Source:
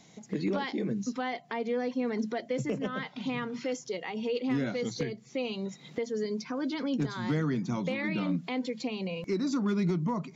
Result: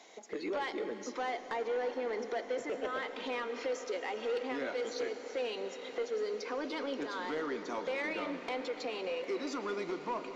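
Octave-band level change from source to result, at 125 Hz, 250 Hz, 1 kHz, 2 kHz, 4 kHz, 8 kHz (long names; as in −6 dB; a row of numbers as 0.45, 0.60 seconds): below −20 dB, −12.0 dB, 0.0 dB, −1.0 dB, −2.5 dB, can't be measured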